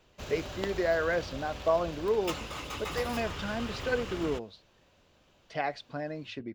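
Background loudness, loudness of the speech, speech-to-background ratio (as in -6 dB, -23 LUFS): -39.5 LUFS, -33.0 LUFS, 6.5 dB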